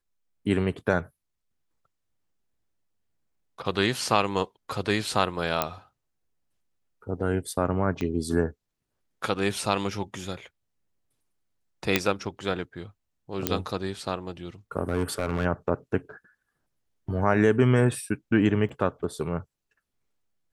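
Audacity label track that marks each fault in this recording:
5.620000	5.620000	click −8 dBFS
8.010000	8.010000	click −18 dBFS
11.960000	11.960000	click −4 dBFS
13.470000	13.470000	click −5 dBFS
14.890000	15.460000	clipping −19.5 dBFS
18.690000	18.700000	drop-out 5.1 ms

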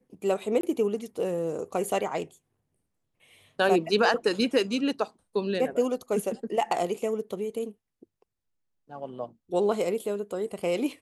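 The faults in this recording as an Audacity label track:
0.610000	0.630000	drop-out 23 ms

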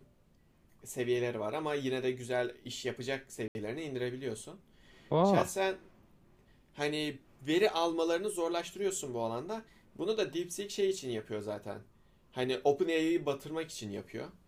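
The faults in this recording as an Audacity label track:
3.480000	3.550000	drop-out 71 ms

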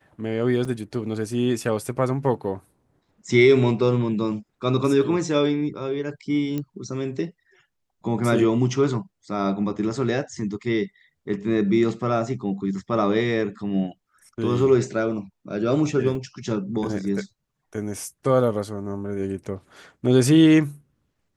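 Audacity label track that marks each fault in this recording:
0.650000	0.650000	drop-out 4.2 ms
6.580000	6.580000	click −16 dBFS
16.150000	16.150000	drop-out 2.8 ms

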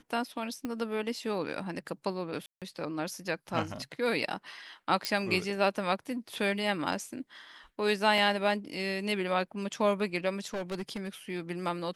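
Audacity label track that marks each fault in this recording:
0.650000	0.650000	click −22 dBFS
2.460000	2.620000	drop-out 157 ms
5.050000	5.050000	click −14 dBFS
8.180000	8.180000	drop-out 3.1 ms
10.530000	11.080000	clipping −31 dBFS

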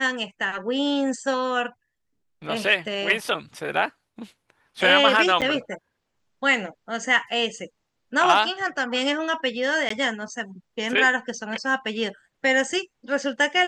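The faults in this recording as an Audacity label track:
5.410000	5.420000	drop-out 7.9 ms
9.890000	9.900000	drop-out 14 ms

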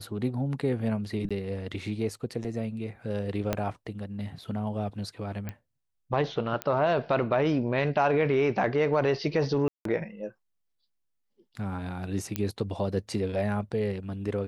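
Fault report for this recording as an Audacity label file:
1.290000	1.310000	drop-out 16 ms
3.530000	3.530000	click −12 dBFS
5.490000	5.490000	click −22 dBFS
6.620000	6.620000	click −15 dBFS
9.680000	9.850000	drop-out 173 ms
12.360000	12.360000	click −13 dBFS

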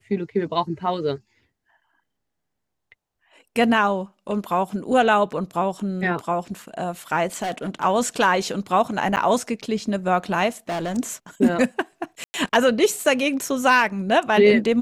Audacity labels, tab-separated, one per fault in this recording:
7.420000	7.840000	clipping −22.5 dBFS
9.160000	9.170000	drop-out 8.5 ms
10.690000	10.980000	clipping −23 dBFS
12.240000	12.340000	drop-out 100 ms

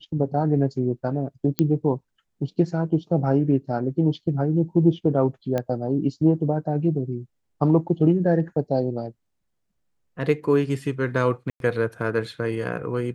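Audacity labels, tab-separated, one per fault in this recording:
1.590000	1.590000	click −9 dBFS
5.580000	5.580000	click −13 dBFS
11.500000	11.600000	drop-out 102 ms

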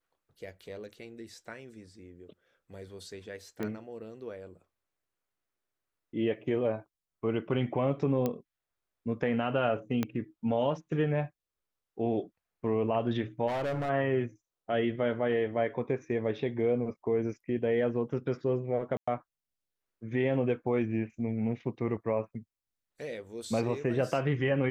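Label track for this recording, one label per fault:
3.630000	3.630000	click −22 dBFS
8.260000	8.260000	click −17 dBFS
10.030000	10.030000	click −16 dBFS
13.470000	13.900000	clipping −29 dBFS
18.970000	19.070000	drop-out 105 ms

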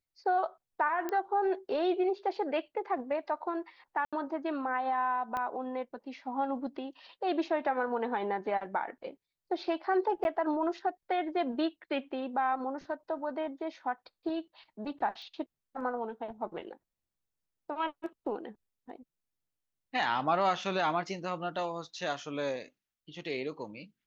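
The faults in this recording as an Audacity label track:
1.090000	1.090000	click −21 dBFS
4.050000	4.130000	drop-out 76 ms
5.370000	5.370000	click −22 dBFS
10.240000	10.250000	drop-out 11 ms
15.220000	15.220000	click −38 dBFS

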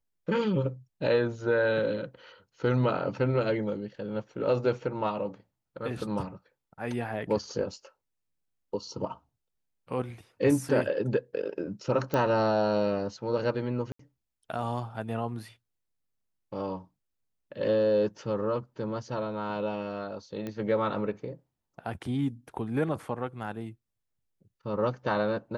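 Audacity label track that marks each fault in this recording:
12.140000	12.140000	click −16 dBFS
13.920000	13.990000	drop-out 74 ms
20.470000	20.470000	click −23 dBFS

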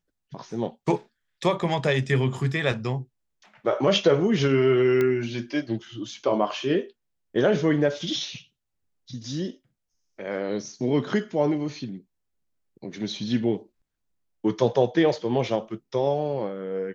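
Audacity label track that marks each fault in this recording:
5.010000	5.010000	click −13 dBFS

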